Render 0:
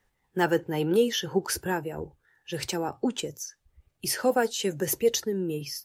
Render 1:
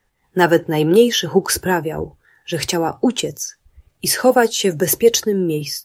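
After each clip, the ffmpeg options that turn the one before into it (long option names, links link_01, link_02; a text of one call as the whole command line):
ffmpeg -i in.wav -af "dynaudnorm=framelen=140:gausssize=3:maxgain=7dB,volume=4dB" out.wav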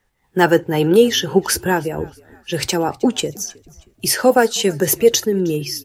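ffmpeg -i in.wav -filter_complex "[0:a]asplit=4[link_01][link_02][link_03][link_04];[link_02]adelay=315,afreqshift=-48,volume=-24dB[link_05];[link_03]adelay=630,afreqshift=-96,volume=-32dB[link_06];[link_04]adelay=945,afreqshift=-144,volume=-39.9dB[link_07];[link_01][link_05][link_06][link_07]amix=inputs=4:normalize=0" out.wav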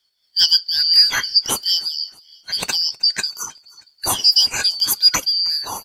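ffmpeg -i in.wav -af "afftfilt=real='real(if(lt(b,272),68*(eq(floor(b/68),0)*3+eq(floor(b/68),1)*2+eq(floor(b/68),2)*1+eq(floor(b/68),3)*0)+mod(b,68),b),0)':imag='imag(if(lt(b,272),68*(eq(floor(b/68),0)*3+eq(floor(b/68),1)*2+eq(floor(b/68),2)*1+eq(floor(b/68),3)*0)+mod(b,68),b),0)':win_size=2048:overlap=0.75,volume=-1.5dB" out.wav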